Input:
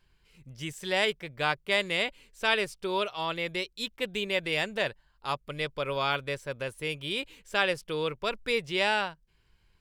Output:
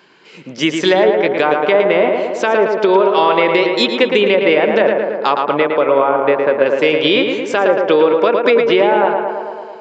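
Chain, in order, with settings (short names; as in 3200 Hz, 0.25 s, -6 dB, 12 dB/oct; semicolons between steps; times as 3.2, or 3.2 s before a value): treble ducked by the level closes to 950 Hz, closed at -23 dBFS; HPF 240 Hz 24 dB/oct; high shelf 2200 Hz -9 dB; compressor, threshold -37 dBFS, peak gain reduction 11 dB; 5.34–6.66 air absorption 370 m; on a send: tape echo 0.111 s, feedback 76%, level -4 dB, low-pass 2300 Hz; on the sum: downsampling 16000 Hz; maximiser +28.5 dB; gain -1 dB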